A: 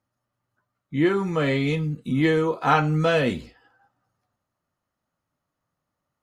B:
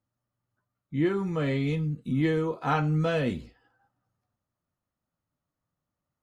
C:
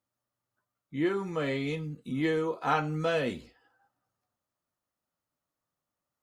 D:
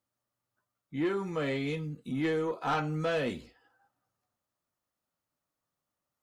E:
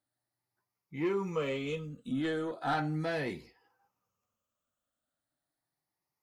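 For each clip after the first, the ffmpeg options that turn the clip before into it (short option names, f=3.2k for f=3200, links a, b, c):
-af "lowshelf=f=310:g=7.5,volume=-8.5dB"
-af "bass=f=250:g=-10,treble=f=4k:g=2"
-af "asoftclip=type=tanh:threshold=-22.5dB"
-af "afftfilt=real='re*pow(10,10/40*sin(2*PI*(0.8*log(max(b,1)*sr/1024/100)/log(2)-(0.37)*(pts-256)/sr)))':imag='im*pow(10,10/40*sin(2*PI*(0.8*log(max(b,1)*sr/1024/100)/log(2)-(0.37)*(pts-256)/sr)))':win_size=1024:overlap=0.75,volume=-3dB"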